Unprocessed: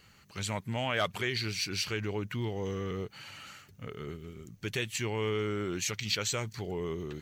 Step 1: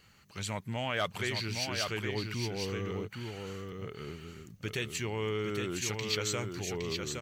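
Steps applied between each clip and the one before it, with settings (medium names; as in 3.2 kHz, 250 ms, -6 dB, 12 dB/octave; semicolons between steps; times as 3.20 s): delay 814 ms -5 dB; trim -2 dB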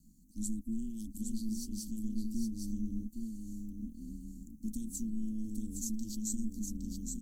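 inverse Chebyshev band-stop 620–2000 Hz, stop band 80 dB; treble shelf 11 kHz -7.5 dB; ring modulator 110 Hz; trim +9 dB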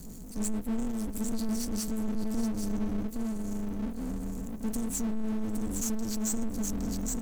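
power-law waveshaper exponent 0.5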